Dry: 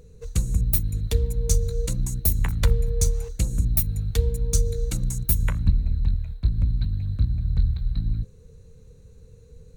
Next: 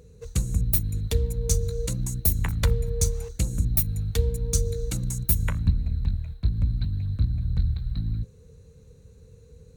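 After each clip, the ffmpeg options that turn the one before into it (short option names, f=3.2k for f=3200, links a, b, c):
-af "highpass=50"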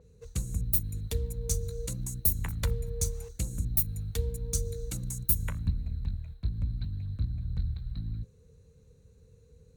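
-af "adynamicequalizer=threshold=0.00631:dfrequency=7000:dqfactor=0.7:tfrequency=7000:tqfactor=0.7:attack=5:release=100:ratio=0.375:range=3:mode=boostabove:tftype=highshelf,volume=-7.5dB"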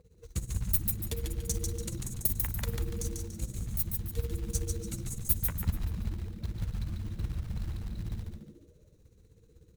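-filter_complex "[0:a]tremolo=f=16:d=0.81,acrusher=bits=5:mode=log:mix=0:aa=0.000001,asplit=2[a][b];[b]asplit=5[c][d][e][f][g];[c]adelay=144,afreqshift=-130,volume=-4dB[h];[d]adelay=288,afreqshift=-260,volume=-12.9dB[i];[e]adelay=432,afreqshift=-390,volume=-21.7dB[j];[f]adelay=576,afreqshift=-520,volume=-30.6dB[k];[g]adelay=720,afreqshift=-650,volume=-39.5dB[l];[h][i][j][k][l]amix=inputs=5:normalize=0[m];[a][m]amix=inputs=2:normalize=0"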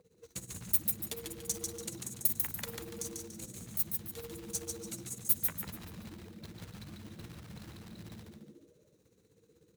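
-filter_complex "[0:a]highpass=200,acrossover=split=1600[a][b];[a]asoftclip=type=tanh:threshold=-40dB[c];[c][b]amix=inputs=2:normalize=0"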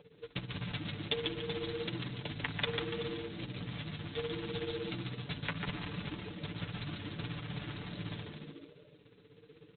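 -af "aresample=8000,acrusher=bits=3:mode=log:mix=0:aa=0.000001,aresample=44100,aemphasis=mode=production:type=75kf,aecho=1:1:6.9:0.65,volume=5.5dB"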